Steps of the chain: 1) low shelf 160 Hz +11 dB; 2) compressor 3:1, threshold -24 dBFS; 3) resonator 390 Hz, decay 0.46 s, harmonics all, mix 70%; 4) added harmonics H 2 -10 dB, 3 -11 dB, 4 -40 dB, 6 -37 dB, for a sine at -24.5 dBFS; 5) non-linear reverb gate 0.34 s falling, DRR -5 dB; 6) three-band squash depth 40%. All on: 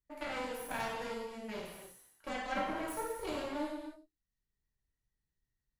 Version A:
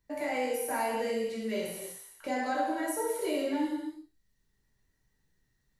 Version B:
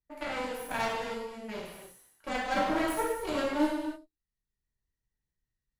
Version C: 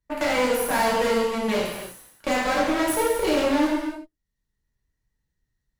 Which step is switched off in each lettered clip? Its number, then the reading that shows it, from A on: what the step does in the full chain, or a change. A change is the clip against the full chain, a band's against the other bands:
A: 4, crest factor change -5.0 dB; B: 2, mean gain reduction 1.5 dB; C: 3, 125 Hz band -3.5 dB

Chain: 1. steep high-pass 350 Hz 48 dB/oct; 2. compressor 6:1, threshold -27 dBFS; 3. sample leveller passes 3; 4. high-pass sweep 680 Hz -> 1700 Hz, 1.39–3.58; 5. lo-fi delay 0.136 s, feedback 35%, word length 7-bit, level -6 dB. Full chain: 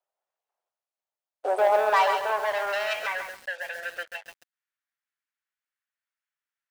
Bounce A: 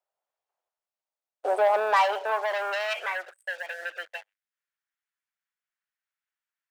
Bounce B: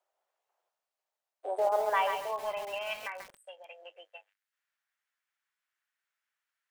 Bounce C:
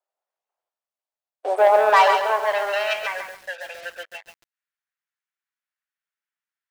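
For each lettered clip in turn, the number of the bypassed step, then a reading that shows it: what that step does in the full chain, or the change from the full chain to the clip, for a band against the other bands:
5, 8 kHz band -2.5 dB; 3, momentary loudness spread change +8 LU; 2, mean gain reduction 2.5 dB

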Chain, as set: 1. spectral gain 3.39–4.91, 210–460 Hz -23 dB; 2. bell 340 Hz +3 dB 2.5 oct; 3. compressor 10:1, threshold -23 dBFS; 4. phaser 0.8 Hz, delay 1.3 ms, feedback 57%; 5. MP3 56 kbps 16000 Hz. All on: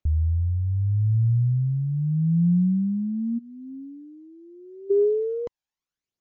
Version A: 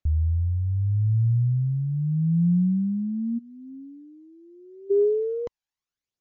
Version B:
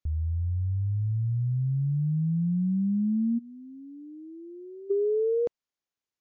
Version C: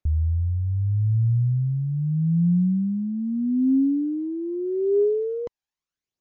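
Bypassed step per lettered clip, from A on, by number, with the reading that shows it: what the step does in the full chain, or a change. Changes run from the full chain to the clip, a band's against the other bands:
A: 2, momentary loudness spread change -5 LU; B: 4, loudness change -4.0 LU; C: 1, momentary loudness spread change -11 LU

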